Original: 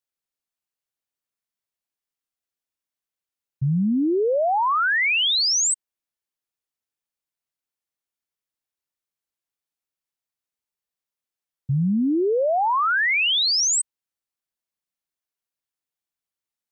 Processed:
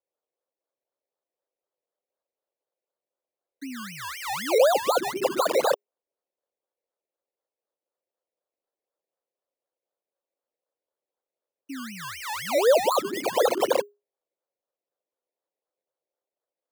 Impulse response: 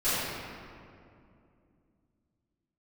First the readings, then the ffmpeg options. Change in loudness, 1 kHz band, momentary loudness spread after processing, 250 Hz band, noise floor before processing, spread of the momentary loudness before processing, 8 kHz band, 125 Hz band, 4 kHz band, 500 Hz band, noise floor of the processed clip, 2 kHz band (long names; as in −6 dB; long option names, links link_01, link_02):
−4.5 dB, −4.0 dB, 17 LU, −11.5 dB, below −85 dBFS, 7 LU, −13.0 dB, −22.5 dB, −12.5 dB, +2.5 dB, below −85 dBFS, −11.0 dB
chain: -af "acrusher=samples=20:mix=1:aa=0.000001:lfo=1:lforange=12:lforate=4,afreqshift=-410,highpass=frequency=520:width_type=q:width=4.3,volume=-5.5dB"